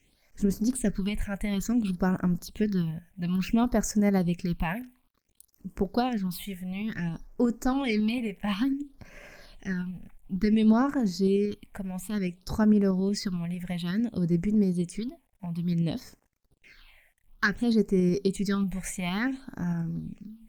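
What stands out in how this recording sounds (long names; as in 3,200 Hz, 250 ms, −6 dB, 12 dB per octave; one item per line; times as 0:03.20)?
tremolo saw up 11 Hz, depth 30%
a quantiser's noise floor 12 bits, dither none
phaser sweep stages 6, 0.57 Hz, lowest notch 320–3,800 Hz
Opus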